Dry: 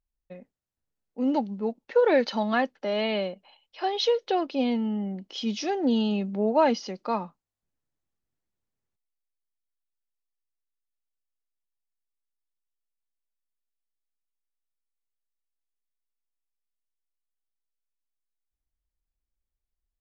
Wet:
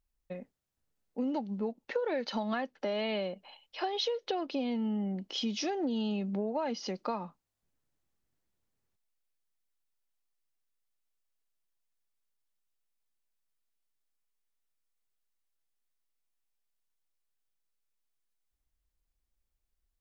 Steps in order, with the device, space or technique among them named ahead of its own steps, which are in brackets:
serial compression, peaks first (downward compressor, threshold −28 dBFS, peak gain reduction 12 dB; downward compressor 1.5 to 1, threshold −42 dBFS, peak gain reduction 6 dB)
level +3.5 dB

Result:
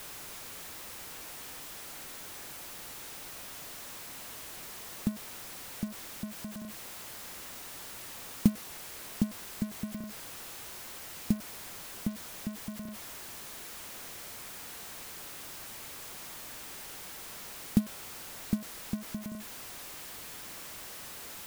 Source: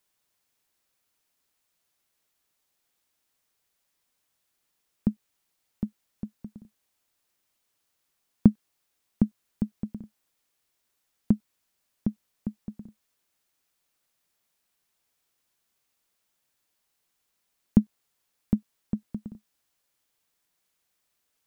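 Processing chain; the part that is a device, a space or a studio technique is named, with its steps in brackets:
early CD player with a faulty converter (converter with a step at zero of −30 dBFS; converter with an unsteady clock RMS 0.071 ms)
level −6.5 dB

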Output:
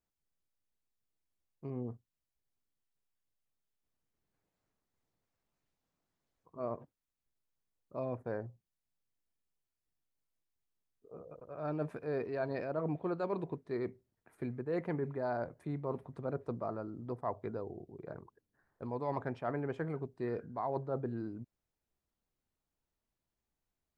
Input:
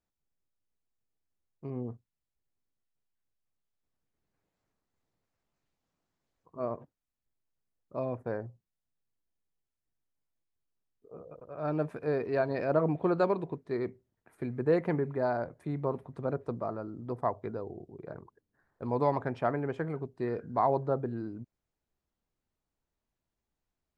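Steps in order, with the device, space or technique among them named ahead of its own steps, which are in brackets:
compression on the reversed sound (reversed playback; downward compressor 10 to 1, threshold −29 dBFS, peak gain reduction 9 dB; reversed playback)
level −2.5 dB

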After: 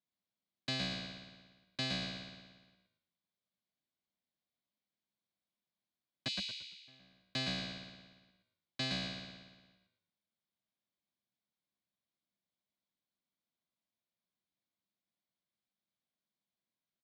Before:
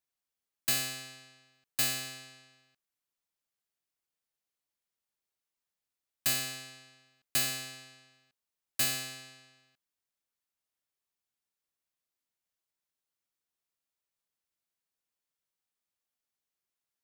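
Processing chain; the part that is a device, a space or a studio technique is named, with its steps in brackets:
0:06.28–0:06.88: Butterworth high-pass 2,400 Hz 48 dB per octave
frequency-shifting delay pedal into a guitar cabinet (echo with shifted repeats 114 ms, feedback 34%, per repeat −74 Hz, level −3.5 dB; loudspeaker in its box 94–3,900 Hz, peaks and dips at 200 Hz +8 dB, 440 Hz −9 dB, 870 Hz −7 dB, 1,300 Hz −10 dB, 1,800 Hz −8 dB, 2,700 Hz −10 dB)
level +2 dB

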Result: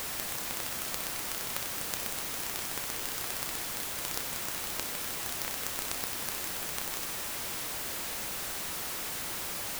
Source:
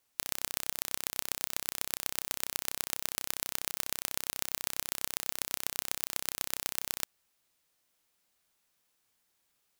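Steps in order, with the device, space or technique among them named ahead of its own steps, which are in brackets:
early CD player with a faulty converter (converter with a step at zero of −23.5 dBFS; converter with an unsteady clock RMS 0.073 ms)
level −5 dB

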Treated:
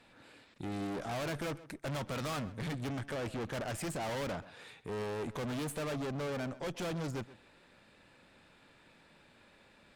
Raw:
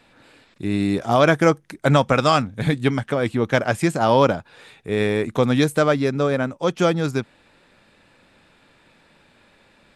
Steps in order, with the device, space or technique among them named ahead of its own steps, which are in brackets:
rockabilly slapback (tube saturation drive 31 dB, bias 0.5; tape delay 131 ms, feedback 22%, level −15.5 dB, low-pass 3,400 Hz)
level −4.5 dB

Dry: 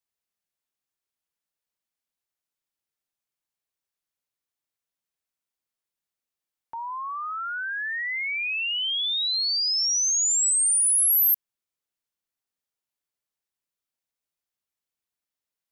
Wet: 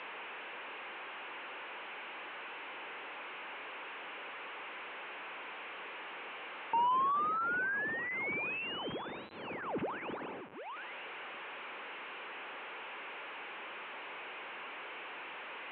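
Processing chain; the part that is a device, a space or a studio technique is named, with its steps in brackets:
digital answering machine (band-pass filter 340–3,400 Hz; linear delta modulator 16 kbit/s, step −53 dBFS; loudspeaker in its box 430–3,800 Hz, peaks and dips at 670 Hz −7 dB, 1,300 Hz −3 dB, 1,900 Hz −5 dB, 3,400 Hz −6 dB)
level +18 dB

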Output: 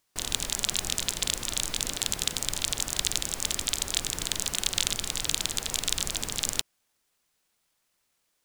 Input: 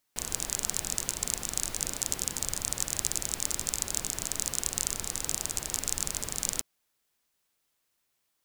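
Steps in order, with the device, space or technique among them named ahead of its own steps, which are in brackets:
octave pedal (pitch-shifted copies added −12 semitones −1 dB)

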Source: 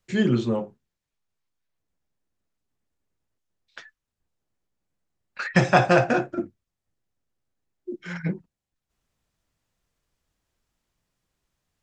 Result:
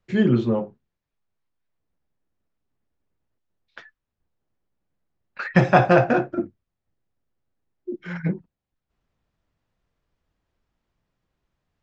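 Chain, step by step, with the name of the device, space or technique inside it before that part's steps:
low-pass filter 5,000 Hz 12 dB per octave
behind a face mask (high-shelf EQ 2,300 Hz −8 dB)
level +3 dB

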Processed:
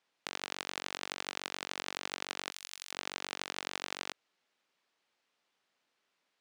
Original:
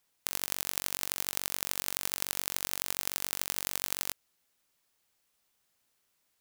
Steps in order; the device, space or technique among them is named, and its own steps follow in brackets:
early digital voice recorder (band-pass filter 230–3,900 Hz; one scale factor per block 7 bits)
0:02.51–0:02.92: first difference
level +1.5 dB

